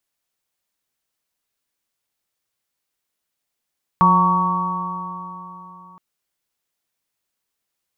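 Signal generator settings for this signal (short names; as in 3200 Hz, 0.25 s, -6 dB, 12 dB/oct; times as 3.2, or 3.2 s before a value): stretched partials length 1.97 s, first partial 178 Hz, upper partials -14/-19/-16.5/1/4.5 dB, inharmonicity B 0.003, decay 3.54 s, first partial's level -16 dB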